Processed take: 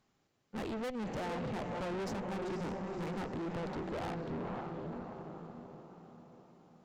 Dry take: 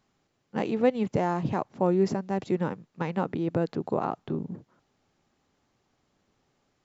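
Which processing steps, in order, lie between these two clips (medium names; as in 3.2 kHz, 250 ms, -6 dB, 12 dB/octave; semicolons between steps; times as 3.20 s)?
echo that smears into a reverb 523 ms, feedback 50%, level -7.5 dB; valve stage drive 36 dB, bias 0.65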